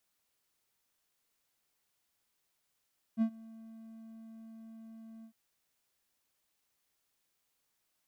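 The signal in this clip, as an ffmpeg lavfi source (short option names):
-f lavfi -i "aevalsrc='0.0794*(1-4*abs(mod(224*t+0.25,1)-0.5))':d=2.154:s=44100,afade=t=in:d=0.047,afade=t=out:st=0.047:d=0.079:silence=0.0631,afade=t=out:st=2.07:d=0.084"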